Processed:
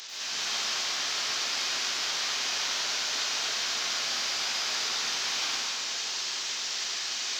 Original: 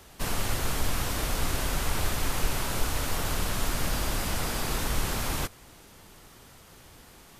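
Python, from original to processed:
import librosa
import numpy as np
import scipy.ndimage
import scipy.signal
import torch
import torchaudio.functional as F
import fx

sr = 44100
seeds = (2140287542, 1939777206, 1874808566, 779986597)

p1 = fx.delta_mod(x, sr, bps=32000, step_db=-33.0)
p2 = scipy.signal.sosfilt(scipy.signal.butter(2, 180.0, 'highpass', fs=sr, output='sos'), p1)
p3 = np.diff(p2, prepend=0.0)
p4 = fx.rider(p3, sr, range_db=10, speed_s=0.5)
p5 = p3 + (p4 * 10.0 ** (0.5 / 20.0))
p6 = 10.0 ** (-28.5 / 20.0) * np.tanh(p5 / 10.0 ** (-28.5 / 20.0))
y = fx.rev_plate(p6, sr, seeds[0], rt60_s=2.2, hf_ratio=0.85, predelay_ms=85, drr_db=-7.5)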